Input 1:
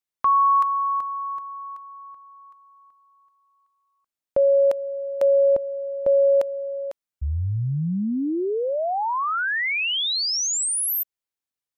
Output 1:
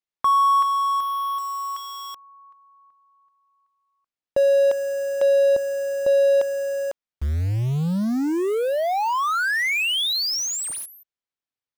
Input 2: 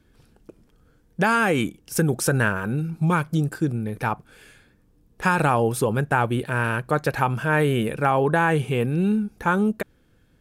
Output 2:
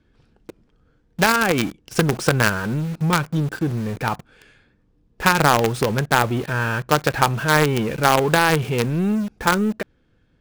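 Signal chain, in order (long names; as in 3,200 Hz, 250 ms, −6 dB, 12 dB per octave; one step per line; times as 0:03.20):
low-pass filter 4,900 Hz 12 dB per octave
in parallel at −5 dB: log-companded quantiser 2 bits
on the sum: level −1.5 dB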